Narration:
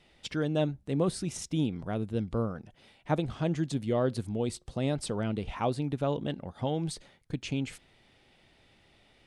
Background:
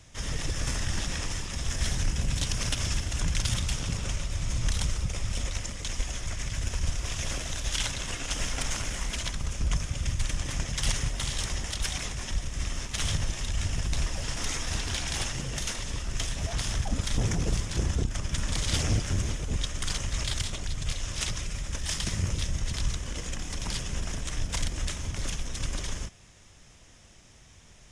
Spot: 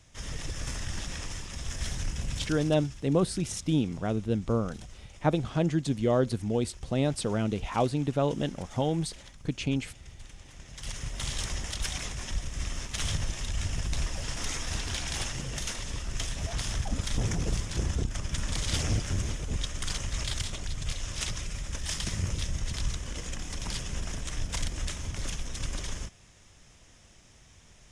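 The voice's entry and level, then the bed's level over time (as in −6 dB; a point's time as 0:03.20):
2.15 s, +3.0 dB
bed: 0:02.37 −5 dB
0:02.89 −18.5 dB
0:10.55 −18.5 dB
0:11.26 −2 dB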